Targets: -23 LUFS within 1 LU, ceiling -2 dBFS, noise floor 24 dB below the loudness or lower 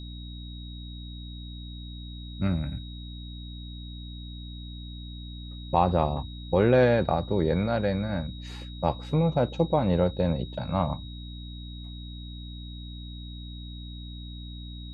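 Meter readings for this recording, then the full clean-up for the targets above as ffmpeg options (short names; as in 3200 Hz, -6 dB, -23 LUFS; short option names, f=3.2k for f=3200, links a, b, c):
hum 60 Hz; harmonics up to 300 Hz; hum level -37 dBFS; steady tone 3800 Hz; tone level -46 dBFS; loudness -26.5 LUFS; peak -8.5 dBFS; loudness target -23.0 LUFS
-> -af "bandreject=f=60:t=h:w=4,bandreject=f=120:t=h:w=4,bandreject=f=180:t=h:w=4,bandreject=f=240:t=h:w=4,bandreject=f=300:t=h:w=4"
-af "bandreject=f=3.8k:w=30"
-af "volume=3.5dB"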